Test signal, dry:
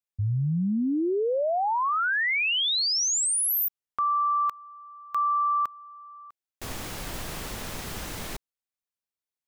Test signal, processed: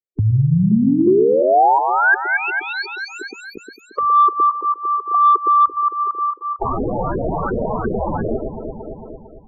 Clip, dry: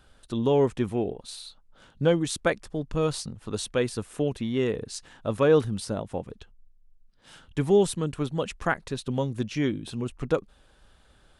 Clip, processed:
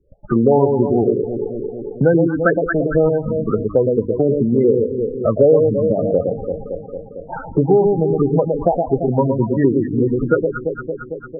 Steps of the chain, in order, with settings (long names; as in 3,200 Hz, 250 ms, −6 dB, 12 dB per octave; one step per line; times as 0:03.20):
mains-hum notches 50/100/150/200/250/300 Hz
noise gate −50 dBFS, range −36 dB
parametric band 4,800 Hz +7 dB 0.67 octaves
in parallel at 0 dB: downward compressor 5 to 1, threshold −39 dBFS
on the sum: auto-filter low-pass saw up 2.8 Hz 390–1,600 Hz
on a send: delay that swaps between a low-pass and a high-pass 113 ms, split 850 Hz, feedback 67%, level −4.5 dB
on the sum: soft clipping −4.5 dBFS
spectral peaks only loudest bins 16
multiband upward and downward compressor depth 70%
level +7 dB